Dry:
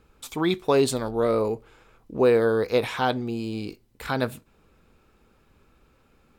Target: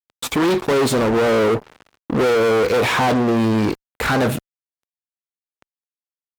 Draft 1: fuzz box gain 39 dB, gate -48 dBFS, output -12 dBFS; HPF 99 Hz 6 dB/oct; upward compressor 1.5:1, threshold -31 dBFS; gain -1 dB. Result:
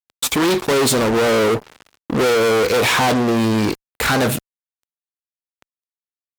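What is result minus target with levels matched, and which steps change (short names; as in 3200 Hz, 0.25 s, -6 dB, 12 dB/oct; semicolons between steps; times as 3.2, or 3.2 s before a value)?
8000 Hz band +7.0 dB
add after HPF: high shelf 3100 Hz -9 dB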